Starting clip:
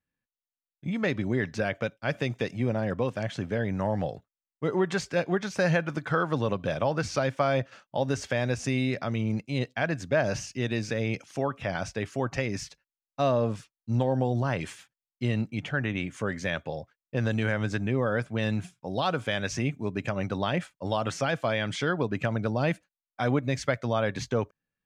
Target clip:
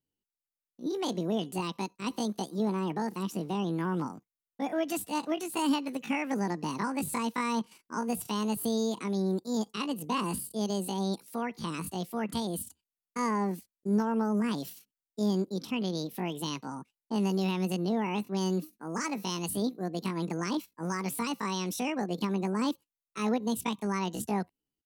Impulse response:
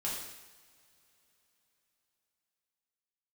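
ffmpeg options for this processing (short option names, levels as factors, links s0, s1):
-af "bass=f=250:g=9,treble=f=4000:g=12,asetrate=76340,aresample=44100,atempo=0.577676,volume=0.398"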